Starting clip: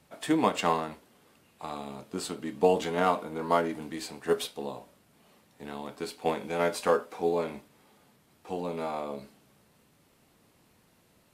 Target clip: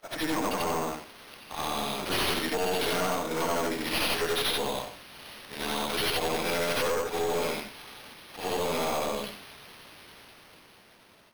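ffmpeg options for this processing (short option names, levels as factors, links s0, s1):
-filter_complex "[0:a]afftfilt=real='re':imag='-im':win_size=8192:overlap=0.75,equalizer=f=61:t=o:w=0.73:g=5.5,acrossover=split=110|530[s0][s1][s2];[s1]acompressor=threshold=0.0126:ratio=4[s3];[s2]acompressor=threshold=0.00631:ratio=4[s4];[s0][s3][s4]amix=inputs=3:normalize=0,equalizer=f=7200:t=o:w=1.7:g=9,asplit=2[s5][s6];[s6]highpass=f=720:p=1,volume=5.01,asoftclip=type=tanh:threshold=0.0596[s7];[s5][s7]amix=inputs=2:normalize=0,lowpass=f=2500:p=1,volume=0.501,acrossover=split=2500[s8][s9];[s9]dynaudnorm=f=220:g=13:m=3.55[s10];[s8][s10]amix=inputs=2:normalize=0,acrusher=samples=6:mix=1:aa=0.000001,aeval=exprs='0.0891*(cos(1*acos(clip(val(0)/0.0891,-1,1)))-cos(1*PI/2))+0.000794*(cos(4*acos(clip(val(0)/0.0891,-1,1)))-cos(4*PI/2))+0.0282*(cos(5*acos(clip(val(0)/0.0891,-1,1)))-cos(5*PI/2))+0.00398*(cos(6*acos(clip(val(0)/0.0891,-1,1)))-cos(6*PI/2))+0.0158*(cos(8*acos(clip(val(0)/0.0891,-1,1)))-cos(8*PI/2))':c=same,agate=range=0.0224:threshold=0.00282:ratio=3:detection=peak"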